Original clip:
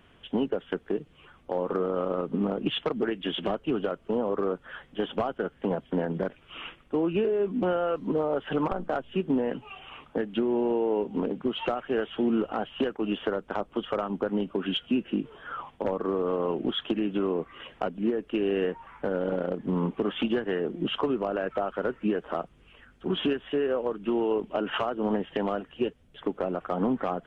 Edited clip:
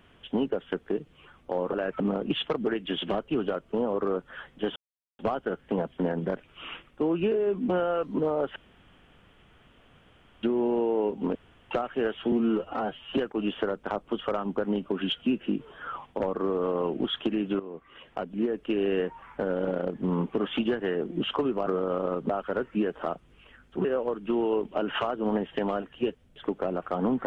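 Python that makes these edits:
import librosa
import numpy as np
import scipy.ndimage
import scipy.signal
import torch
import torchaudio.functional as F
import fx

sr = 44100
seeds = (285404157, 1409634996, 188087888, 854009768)

y = fx.edit(x, sr, fx.swap(start_s=1.73, length_s=0.63, other_s=21.31, other_length_s=0.27),
    fx.insert_silence(at_s=5.12, length_s=0.43),
    fx.room_tone_fill(start_s=8.49, length_s=1.87),
    fx.room_tone_fill(start_s=11.28, length_s=0.36),
    fx.stretch_span(start_s=12.25, length_s=0.57, factor=1.5),
    fx.fade_in_from(start_s=17.24, length_s=0.95, floor_db=-15.5),
    fx.cut(start_s=23.13, length_s=0.5), tone=tone)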